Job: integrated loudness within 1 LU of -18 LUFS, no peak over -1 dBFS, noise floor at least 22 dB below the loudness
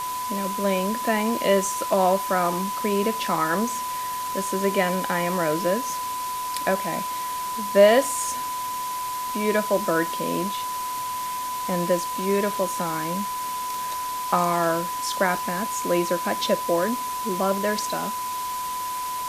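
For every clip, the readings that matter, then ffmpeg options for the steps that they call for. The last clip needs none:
steady tone 1000 Hz; tone level -27 dBFS; noise floor -29 dBFS; noise floor target -47 dBFS; loudness -24.5 LUFS; peak -4.0 dBFS; loudness target -18.0 LUFS
-> -af "bandreject=f=1k:w=30"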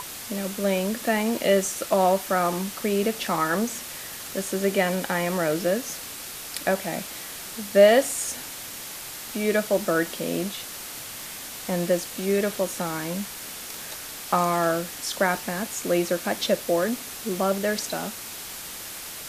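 steady tone none; noise floor -38 dBFS; noise floor target -48 dBFS
-> -af "afftdn=nr=10:nf=-38"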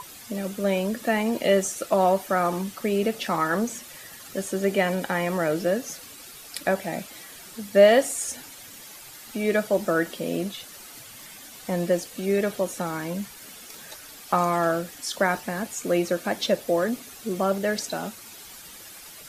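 noise floor -44 dBFS; noise floor target -47 dBFS
-> -af "afftdn=nr=6:nf=-44"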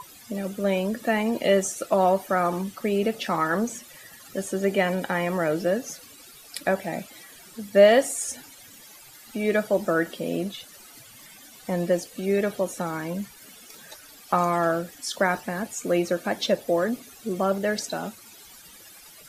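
noise floor -48 dBFS; loudness -25.5 LUFS; peak -4.5 dBFS; loudness target -18.0 LUFS
-> -af "volume=7.5dB,alimiter=limit=-1dB:level=0:latency=1"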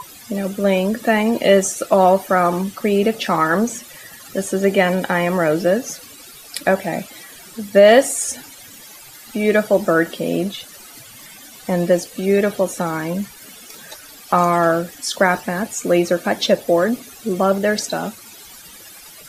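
loudness -18.0 LUFS; peak -1.0 dBFS; noise floor -41 dBFS

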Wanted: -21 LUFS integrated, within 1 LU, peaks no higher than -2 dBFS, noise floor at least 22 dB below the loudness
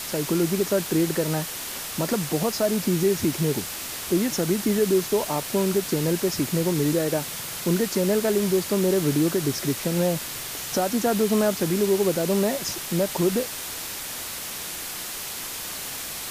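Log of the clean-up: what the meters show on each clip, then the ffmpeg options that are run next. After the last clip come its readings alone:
noise floor -34 dBFS; noise floor target -47 dBFS; loudness -24.5 LUFS; peak -10.5 dBFS; loudness target -21.0 LUFS
-> -af "afftdn=nr=13:nf=-34"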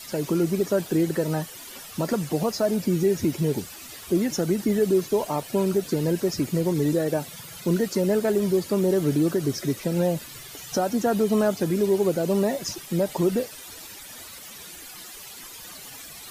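noise floor -42 dBFS; noise floor target -47 dBFS
-> -af "afftdn=nr=6:nf=-42"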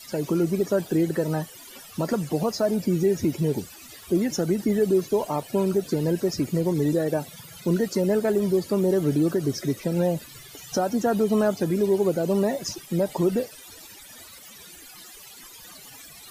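noise floor -46 dBFS; noise floor target -47 dBFS
-> -af "afftdn=nr=6:nf=-46"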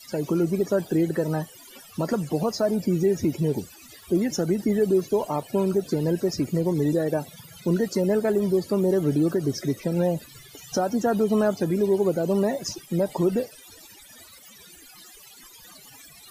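noise floor -49 dBFS; loudness -24.5 LUFS; peak -12.0 dBFS; loudness target -21.0 LUFS
-> -af "volume=3.5dB"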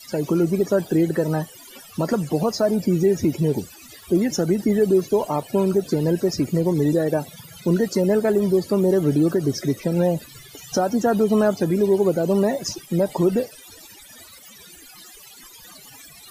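loudness -21.0 LUFS; peak -8.5 dBFS; noise floor -45 dBFS

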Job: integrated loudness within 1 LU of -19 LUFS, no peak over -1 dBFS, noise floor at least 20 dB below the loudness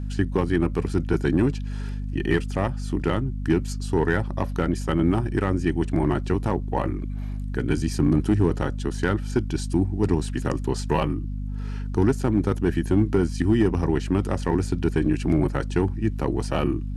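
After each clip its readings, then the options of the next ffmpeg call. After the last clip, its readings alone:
hum 50 Hz; harmonics up to 250 Hz; hum level -27 dBFS; loudness -24.5 LUFS; peak -9.5 dBFS; loudness target -19.0 LUFS
-> -af "bandreject=f=50:t=h:w=6,bandreject=f=100:t=h:w=6,bandreject=f=150:t=h:w=6,bandreject=f=200:t=h:w=6,bandreject=f=250:t=h:w=6"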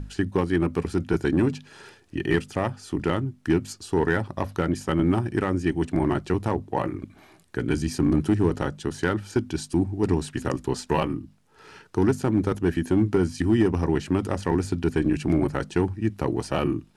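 hum none; loudness -25.5 LUFS; peak -10.5 dBFS; loudness target -19.0 LUFS
-> -af "volume=6.5dB"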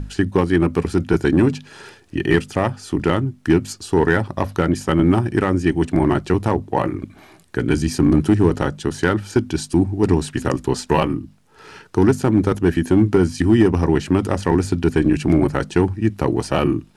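loudness -19.0 LUFS; peak -4.0 dBFS; noise floor -50 dBFS

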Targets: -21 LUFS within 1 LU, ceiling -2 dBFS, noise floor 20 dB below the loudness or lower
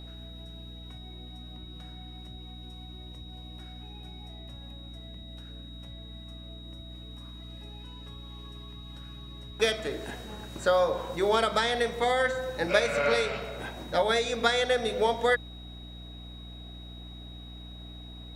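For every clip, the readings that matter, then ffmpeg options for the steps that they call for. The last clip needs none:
hum 60 Hz; harmonics up to 300 Hz; hum level -42 dBFS; steady tone 3800 Hz; tone level -48 dBFS; loudness -27.5 LUFS; peak -10.0 dBFS; loudness target -21.0 LUFS
-> -af "bandreject=f=60:t=h:w=6,bandreject=f=120:t=h:w=6,bandreject=f=180:t=h:w=6,bandreject=f=240:t=h:w=6,bandreject=f=300:t=h:w=6"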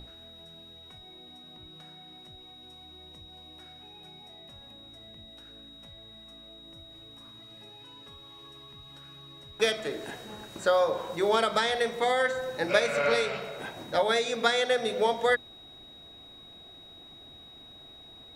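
hum none; steady tone 3800 Hz; tone level -48 dBFS
-> -af "bandreject=f=3.8k:w=30"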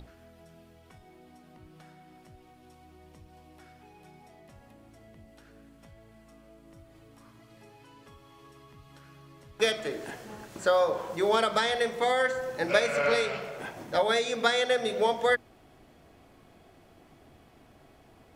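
steady tone none; loudness -27.5 LUFS; peak -10.5 dBFS; loudness target -21.0 LUFS
-> -af "volume=6.5dB"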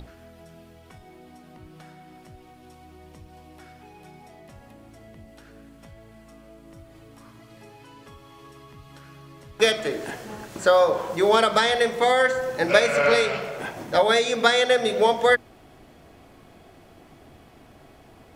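loudness -21.0 LUFS; peak -4.0 dBFS; noise floor -51 dBFS

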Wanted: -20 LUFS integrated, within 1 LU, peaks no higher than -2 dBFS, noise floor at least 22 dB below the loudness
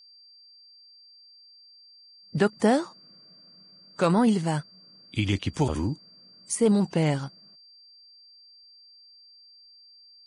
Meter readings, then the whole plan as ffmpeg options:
steady tone 4700 Hz; tone level -51 dBFS; loudness -25.5 LUFS; peak -10.0 dBFS; loudness target -20.0 LUFS
-> -af "bandreject=f=4.7k:w=30"
-af "volume=5.5dB"

